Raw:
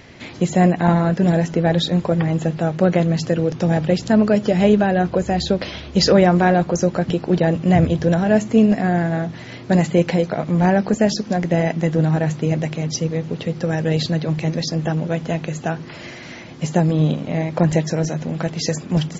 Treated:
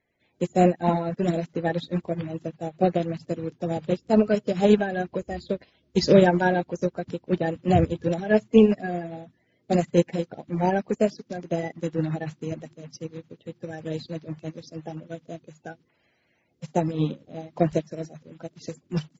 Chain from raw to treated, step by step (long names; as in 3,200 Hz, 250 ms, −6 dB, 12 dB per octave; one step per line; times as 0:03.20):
spectral magnitudes quantised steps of 30 dB
expander for the loud parts 2.5 to 1, over −32 dBFS